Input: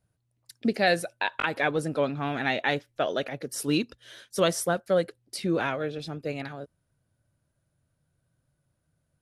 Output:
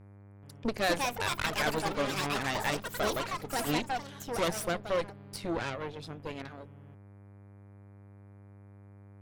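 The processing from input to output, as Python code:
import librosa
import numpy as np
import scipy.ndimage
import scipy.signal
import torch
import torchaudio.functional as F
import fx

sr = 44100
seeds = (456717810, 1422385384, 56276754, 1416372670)

y = fx.dmg_buzz(x, sr, base_hz=100.0, harmonics=24, level_db=-45.0, tilt_db=-8, odd_only=False)
y = fx.cheby_harmonics(y, sr, harmonics=(8,), levels_db=(-15,), full_scale_db=-10.0)
y = fx.echo_pitch(y, sr, ms=430, semitones=6, count=3, db_per_echo=-3.0)
y = y * librosa.db_to_amplitude(-7.5)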